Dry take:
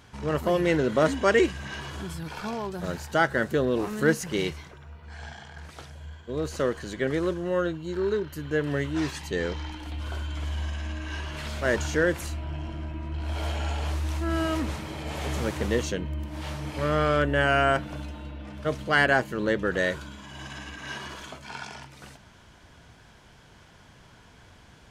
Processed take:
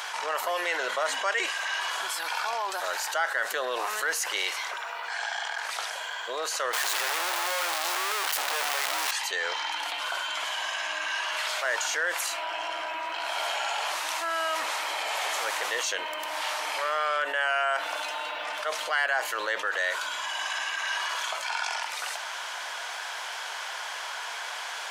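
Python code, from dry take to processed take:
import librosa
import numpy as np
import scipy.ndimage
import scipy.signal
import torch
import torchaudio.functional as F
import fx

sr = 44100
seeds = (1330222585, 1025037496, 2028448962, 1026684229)

y = fx.clip_1bit(x, sr, at=(6.73, 9.11))
y = scipy.signal.sosfilt(scipy.signal.butter(4, 720.0, 'highpass', fs=sr, output='sos'), y)
y = fx.env_flatten(y, sr, amount_pct=70)
y = y * 10.0 ** (-5.0 / 20.0)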